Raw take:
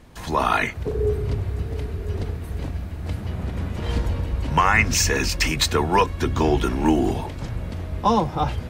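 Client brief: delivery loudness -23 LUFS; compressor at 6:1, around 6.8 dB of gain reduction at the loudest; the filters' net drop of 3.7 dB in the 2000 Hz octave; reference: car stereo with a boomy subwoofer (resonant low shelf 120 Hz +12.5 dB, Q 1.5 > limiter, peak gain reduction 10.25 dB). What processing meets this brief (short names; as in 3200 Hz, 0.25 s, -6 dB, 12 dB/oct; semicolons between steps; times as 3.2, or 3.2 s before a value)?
bell 2000 Hz -4.5 dB; compressor 6:1, threshold -21 dBFS; resonant low shelf 120 Hz +12.5 dB, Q 1.5; gain -0.5 dB; limiter -14.5 dBFS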